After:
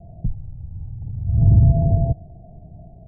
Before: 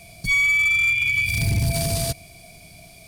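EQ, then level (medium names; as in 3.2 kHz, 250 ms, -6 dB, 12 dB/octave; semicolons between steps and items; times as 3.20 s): Chebyshev low-pass 870 Hz, order 10; bass shelf 200 Hz +12 dB; 0.0 dB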